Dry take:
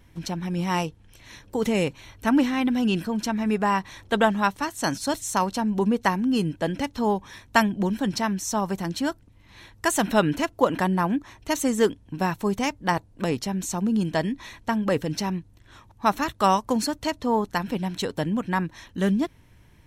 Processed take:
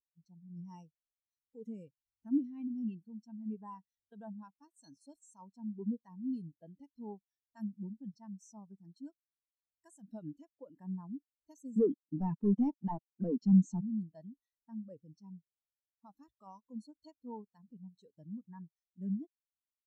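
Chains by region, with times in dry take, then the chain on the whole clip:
11.76–13.81 HPF 170 Hz 24 dB/oct + sample leveller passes 5 + tape spacing loss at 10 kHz 23 dB
whole clip: tone controls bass +2 dB, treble +15 dB; limiter -12 dBFS; spectral expander 2.5:1; gain -4.5 dB

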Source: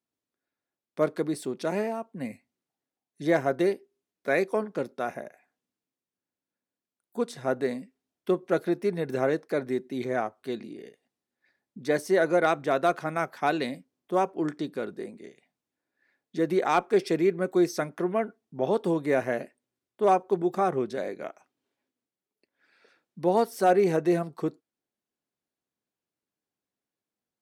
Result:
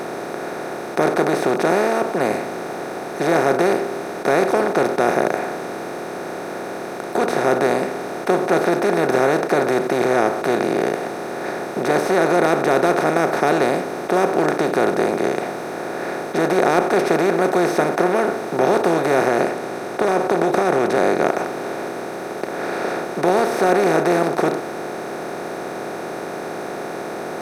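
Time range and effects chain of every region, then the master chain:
19.26–21.26 LPF 10000 Hz + compressor 5:1, threshold -26 dBFS
whole clip: per-bin compression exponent 0.2; low shelf 190 Hz +3 dB; gain -1.5 dB

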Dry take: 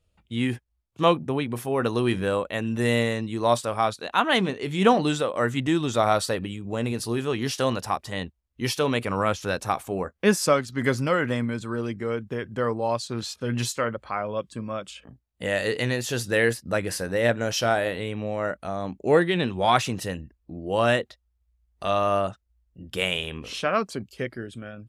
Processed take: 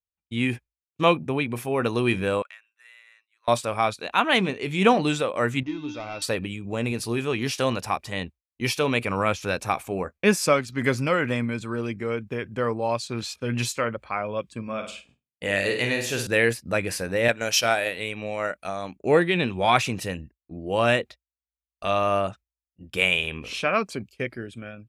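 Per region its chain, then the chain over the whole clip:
2.42–3.48 ladder high-pass 1200 Hz, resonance 45% + compressor 4:1, threshold -42 dBFS + core saturation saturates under 1600 Hz
5.63–6.22 sample leveller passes 2 + steep low-pass 6500 Hz 96 dB/oct + resonator 300 Hz, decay 0.54 s, harmonics odd, mix 90%
14.62–16.27 bell 110 Hz -3.5 dB 2.1 oct + expander -49 dBFS + flutter echo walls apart 8.7 m, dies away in 0.48 s
17.28–18.96 tilt +2 dB/oct + transient shaper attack +3 dB, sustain -5 dB
whole clip: expander -37 dBFS; bell 2400 Hz +10 dB 0.23 oct

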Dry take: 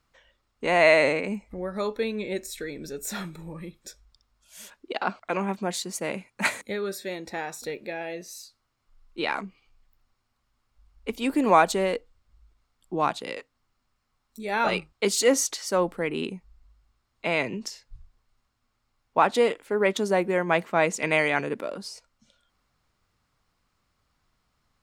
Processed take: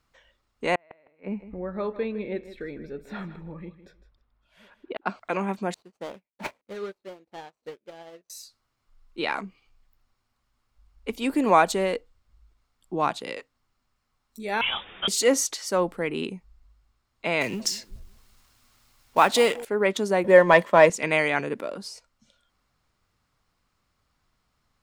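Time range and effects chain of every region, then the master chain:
0.75–5.06 flipped gate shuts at -15 dBFS, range -40 dB + air absorption 430 m + feedback echo 0.157 s, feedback 18%, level -14 dB
5.74–8.3 median filter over 25 samples + overdrive pedal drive 7 dB, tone 6000 Hz, clips at -18.5 dBFS + upward expander 2.5:1, over -49 dBFS
14.61–15.08 requantised 6-bit, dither triangular + inverted band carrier 3600 Hz + ensemble effect
17.41–19.65 G.711 law mismatch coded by mu + high shelf 2200 Hz +9.5 dB + analogue delay 0.183 s, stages 1024, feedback 36%, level -18 dB
20.24–20.9 HPF 91 Hz 24 dB/oct + sample leveller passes 1 + small resonant body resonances 570/1000/1800/3300 Hz, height 13 dB
whole clip: dry

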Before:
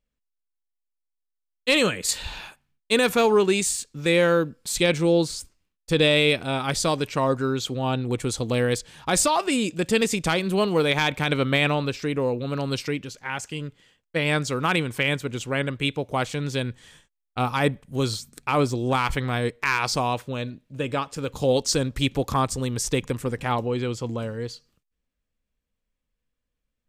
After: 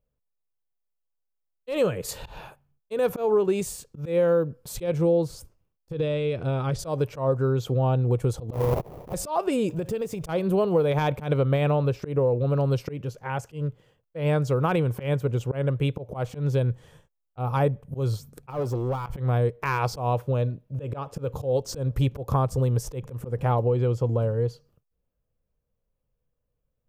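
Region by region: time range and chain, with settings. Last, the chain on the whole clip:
5.92–6.79 bell 780 Hz -7 dB 0.73 oct + compressor 5:1, threshold -25 dBFS + LPF 6500 Hz
8.53–9.14 tilt shelf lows -5 dB, about 1300 Hz + sample-rate reducer 1500 Hz, jitter 20%
9.69–10.29 G.711 law mismatch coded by mu + compressor 10:1, threshold -28 dBFS
18.5–19.06 low shelf 140 Hz -11.5 dB + compressor 4:1, threshold -24 dBFS + hard clip -28.5 dBFS
whole clip: graphic EQ 125/250/500/2000/4000/8000 Hz +9/-7/+7/-9/-10/-12 dB; compressor 4:1, threshold -21 dBFS; auto swell 0.128 s; gain +2 dB

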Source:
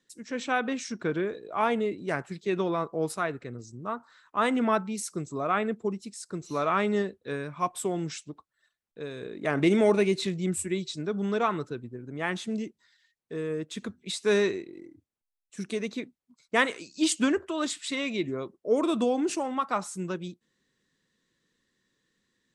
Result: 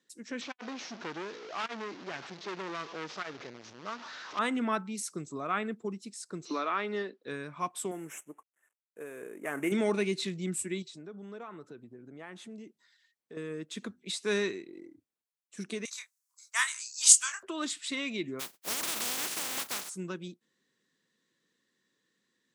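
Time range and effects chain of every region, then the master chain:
0.41–4.39 delta modulation 32 kbps, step -36 dBFS + low shelf 230 Hz -6 dB + core saturation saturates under 2100 Hz
6.45–7.23 Chebyshev band-pass 260–5000 Hz, order 3 + three-band squash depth 70%
7.91–9.72 CVSD 64 kbps + Butterworth band-stop 4400 Hz, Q 0.82 + tone controls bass -11 dB, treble +4 dB
10.82–13.37 dynamic EQ 5000 Hz, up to -6 dB, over -50 dBFS, Q 0.83 + compressor 3:1, threshold -43 dBFS
15.85–17.43 steep high-pass 980 Hz + resonant high shelf 4600 Hz +12 dB, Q 1.5 + doubler 26 ms -6 dB
18.39–19.88 spectral contrast lowered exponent 0.13 + compressor 2.5:1, threshold -28 dBFS + hard clip -25.5 dBFS
whole clip: HPF 180 Hz 12 dB/oct; dynamic EQ 580 Hz, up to -7 dB, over -40 dBFS, Q 0.89; gain -2 dB

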